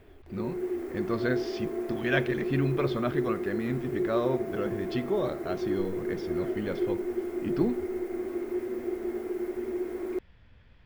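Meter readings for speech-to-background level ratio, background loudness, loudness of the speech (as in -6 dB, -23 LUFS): 0.5 dB, -33.0 LUFS, -32.5 LUFS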